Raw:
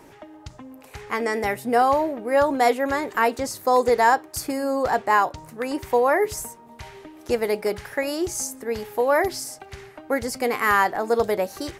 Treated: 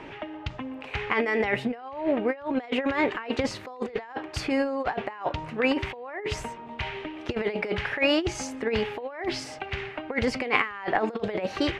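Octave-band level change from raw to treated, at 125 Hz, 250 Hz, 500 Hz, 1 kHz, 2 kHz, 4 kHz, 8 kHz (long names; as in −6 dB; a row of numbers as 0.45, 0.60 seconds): +3.5, 0.0, −6.5, −10.5, −3.0, +2.0, −11.0 decibels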